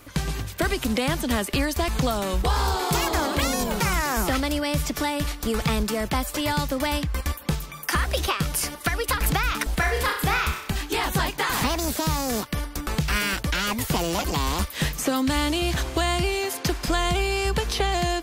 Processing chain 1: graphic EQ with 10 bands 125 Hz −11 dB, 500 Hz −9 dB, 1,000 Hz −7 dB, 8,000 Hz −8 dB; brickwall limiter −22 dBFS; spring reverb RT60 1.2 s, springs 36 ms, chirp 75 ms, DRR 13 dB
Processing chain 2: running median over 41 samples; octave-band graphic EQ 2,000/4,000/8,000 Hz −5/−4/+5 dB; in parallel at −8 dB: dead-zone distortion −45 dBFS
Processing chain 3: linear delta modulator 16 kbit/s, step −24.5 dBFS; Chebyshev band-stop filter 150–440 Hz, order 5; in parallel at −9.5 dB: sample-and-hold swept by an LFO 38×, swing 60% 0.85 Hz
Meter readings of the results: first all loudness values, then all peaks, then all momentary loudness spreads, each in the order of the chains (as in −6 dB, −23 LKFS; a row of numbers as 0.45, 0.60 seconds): −31.5, −26.5, −26.0 LKFS; −20.0, −11.5, −10.0 dBFS; 3, 4, 4 LU